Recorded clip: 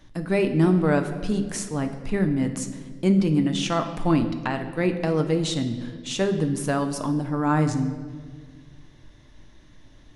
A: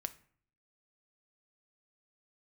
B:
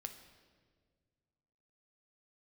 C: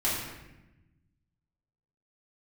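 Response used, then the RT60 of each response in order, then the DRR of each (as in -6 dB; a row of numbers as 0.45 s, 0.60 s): B; 0.50 s, 1.7 s, 1.0 s; 10.0 dB, 6.0 dB, -8.0 dB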